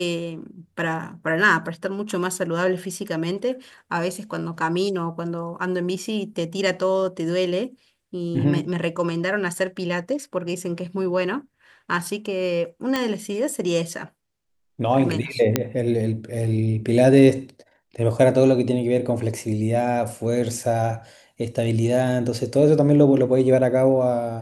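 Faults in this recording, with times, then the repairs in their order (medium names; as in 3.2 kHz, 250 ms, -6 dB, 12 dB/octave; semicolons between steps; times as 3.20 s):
12.96 s: pop -9 dBFS
15.56 s: pop -3 dBFS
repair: de-click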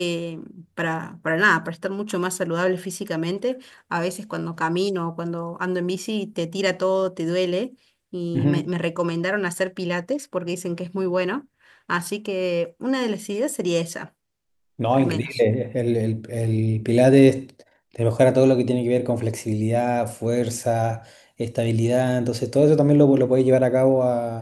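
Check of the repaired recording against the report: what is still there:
nothing left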